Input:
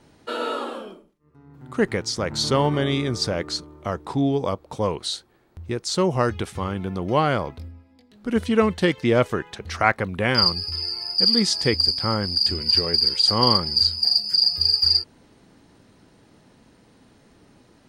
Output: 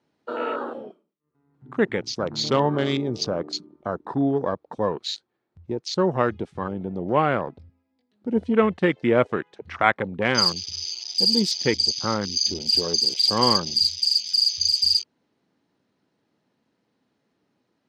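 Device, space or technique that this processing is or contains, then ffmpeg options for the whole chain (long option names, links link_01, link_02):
over-cleaned archive recording: -filter_complex "[0:a]highpass=150,lowpass=5900,afwtdn=0.0282,asettb=1/sr,asplit=3[link_01][link_02][link_03];[link_01]atrim=end=11.684[link_04];[link_02]atrim=start=11.68:end=12.16,asetpts=PTS-STARTPTS,afade=type=in:duration=0.004:curve=qsin,afade=type=out:start_time=0.476:duration=0.004:curve=qsin,lowpass=frequency=8700:width=0.5412,lowpass=frequency=8700:width=1.3066[link_05];[link_03]atrim=start=12.156[link_06];[link_04][link_05]acrossfade=duration=0.004:curve1=hsin:curve2=qsin[link_07];[link_07][link_06]acrossfade=duration=0.004:curve1=qsin:curve2=hsin"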